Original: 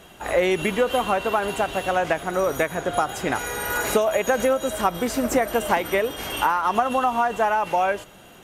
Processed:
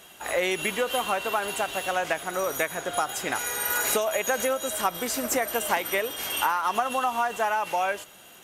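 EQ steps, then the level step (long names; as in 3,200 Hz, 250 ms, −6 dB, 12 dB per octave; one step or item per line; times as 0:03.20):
spectral tilt +2.5 dB per octave
−4.0 dB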